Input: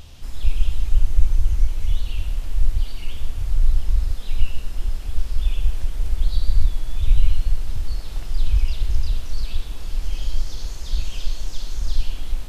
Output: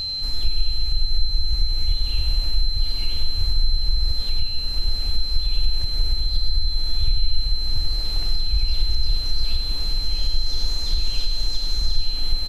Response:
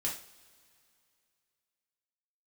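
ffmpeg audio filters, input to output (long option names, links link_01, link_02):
-af "acompressor=threshold=-17dB:ratio=6,aeval=exprs='val(0)+0.0447*sin(2*PI*4100*n/s)':channel_layout=same,aecho=1:1:98|196|294|392|490|588|686:0.316|0.187|0.11|0.0649|0.0383|0.0226|0.0133,volume=2.5dB"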